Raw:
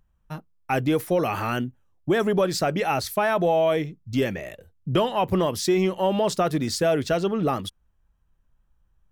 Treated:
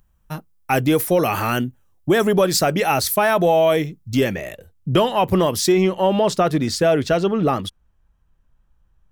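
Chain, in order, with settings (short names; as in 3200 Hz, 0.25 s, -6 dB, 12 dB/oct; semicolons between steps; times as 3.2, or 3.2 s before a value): high shelf 6700 Hz +10.5 dB, from 4.17 s +5 dB, from 5.72 s -4.5 dB; gain +5 dB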